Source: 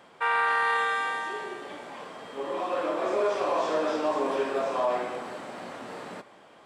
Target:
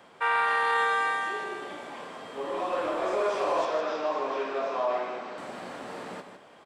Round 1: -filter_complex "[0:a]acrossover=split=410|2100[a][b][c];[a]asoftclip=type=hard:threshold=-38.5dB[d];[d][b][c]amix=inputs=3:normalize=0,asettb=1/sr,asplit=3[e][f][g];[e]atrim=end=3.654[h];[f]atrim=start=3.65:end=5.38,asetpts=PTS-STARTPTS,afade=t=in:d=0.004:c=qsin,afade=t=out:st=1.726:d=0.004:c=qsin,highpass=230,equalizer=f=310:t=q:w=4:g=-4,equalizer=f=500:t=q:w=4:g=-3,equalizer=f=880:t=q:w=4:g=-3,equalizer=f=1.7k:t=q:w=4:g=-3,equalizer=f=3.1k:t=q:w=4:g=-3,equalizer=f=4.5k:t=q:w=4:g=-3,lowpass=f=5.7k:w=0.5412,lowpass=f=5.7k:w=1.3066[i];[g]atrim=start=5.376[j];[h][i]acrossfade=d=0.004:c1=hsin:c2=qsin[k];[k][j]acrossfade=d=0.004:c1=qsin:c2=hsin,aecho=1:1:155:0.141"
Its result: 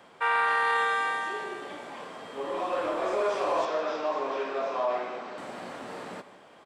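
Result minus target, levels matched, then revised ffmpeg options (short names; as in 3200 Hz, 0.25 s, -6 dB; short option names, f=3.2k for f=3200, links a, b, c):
echo-to-direct -8 dB
-filter_complex "[0:a]acrossover=split=410|2100[a][b][c];[a]asoftclip=type=hard:threshold=-38.5dB[d];[d][b][c]amix=inputs=3:normalize=0,asettb=1/sr,asplit=3[e][f][g];[e]atrim=end=3.654[h];[f]atrim=start=3.65:end=5.38,asetpts=PTS-STARTPTS,afade=t=in:d=0.004:c=qsin,afade=t=out:st=1.726:d=0.004:c=qsin,highpass=230,equalizer=f=310:t=q:w=4:g=-4,equalizer=f=500:t=q:w=4:g=-3,equalizer=f=880:t=q:w=4:g=-3,equalizer=f=1.7k:t=q:w=4:g=-3,equalizer=f=3.1k:t=q:w=4:g=-3,equalizer=f=4.5k:t=q:w=4:g=-3,lowpass=f=5.7k:w=0.5412,lowpass=f=5.7k:w=1.3066[i];[g]atrim=start=5.376[j];[h][i]acrossfade=d=0.004:c1=hsin:c2=qsin[k];[k][j]acrossfade=d=0.004:c1=qsin:c2=hsin,aecho=1:1:155:0.355"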